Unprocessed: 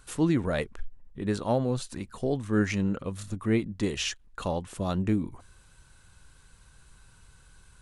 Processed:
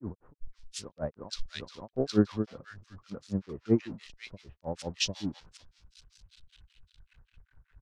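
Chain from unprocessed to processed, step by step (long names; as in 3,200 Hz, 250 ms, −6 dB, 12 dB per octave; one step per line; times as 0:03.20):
converter with a step at zero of −36 dBFS
low-pass filter sweep 5,200 Hz → 1,600 Hz, 0:05.61–0:07.71
granular cloud 152 ms, grains 5.2 per second, spray 562 ms
multiband delay without the direct sound lows, highs 510 ms, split 1,200 Hz
multiband upward and downward expander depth 100%
level −5.5 dB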